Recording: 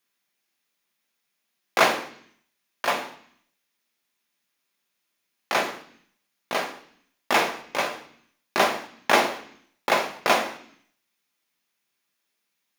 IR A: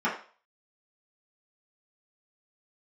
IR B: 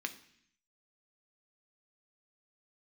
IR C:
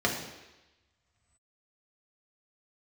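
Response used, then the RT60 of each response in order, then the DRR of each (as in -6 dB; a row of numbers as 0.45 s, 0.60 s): B; 0.40 s, 0.65 s, 1.0 s; -8.5 dB, 6.0 dB, -1.5 dB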